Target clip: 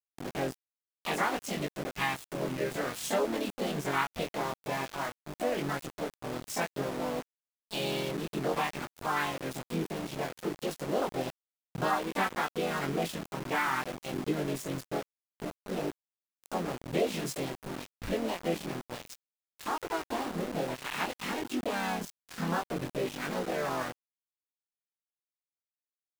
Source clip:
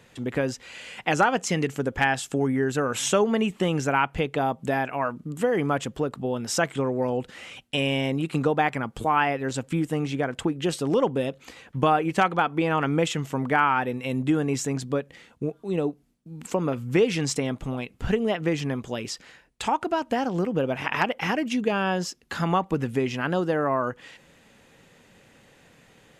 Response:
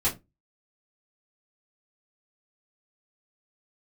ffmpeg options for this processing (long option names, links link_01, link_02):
-filter_complex "[0:a]asplit=4[link_01][link_02][link_03][link_04];[link_02]asetrate=52444,aresample=44100,atempo=0.840896,volume=-5dB[link_05];[link_03]asetrate=58866,aresample=44100,atempo=0.749154,volume=-6dB[link_06];[link_04]asetrate=66075,aresample=44100,atempo=0.66742,volume=-5dB[link_07];[link_01][link_05][link_06][link_07]amix=inputs=4:normalize=0,flanger=delay=20:depth=4.5:speed=0.56,aeval=exprs='val(0)*gte(abs(val(0)),0.0398)':channel_layout=same,volume=-8dB"